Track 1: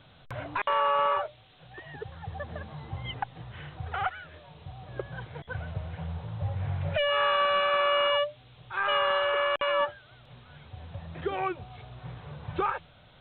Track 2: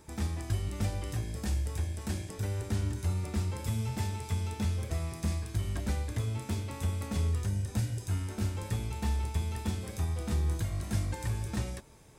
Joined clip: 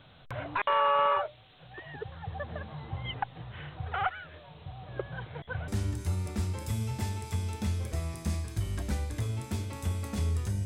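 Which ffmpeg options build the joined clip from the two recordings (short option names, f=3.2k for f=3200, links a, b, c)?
-filter_complex "[0:a]apad=whole_dur=10.65,atrim=end=10.65,atrim=end=5.682[a];[1:a]atrim=start=2.658:end=7.63[b];[a][b]acrossfade=d=0.004:c1=hsin:c2=hsin"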